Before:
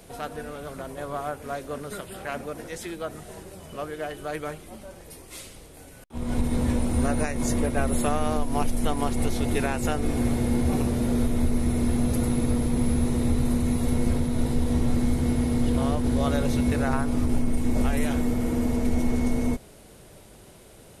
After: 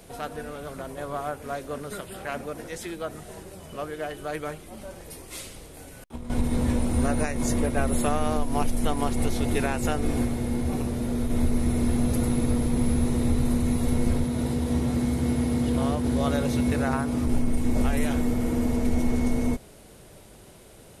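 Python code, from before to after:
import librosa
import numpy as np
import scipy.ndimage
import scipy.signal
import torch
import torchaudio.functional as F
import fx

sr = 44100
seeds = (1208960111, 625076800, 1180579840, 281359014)

y = fx.over_compress(x, sr, threshold_db=-34.0, ratio=-1.0, at=(4.77, 6.3))
y = fx.highpass(y, sr, hz=66.0, slope=12, at=(14.24, 17.27))
y = fx.edit(y, sr, fx.clip_gain(start_s=10.25, length_s=1.05, db=-3.5), tone=tone)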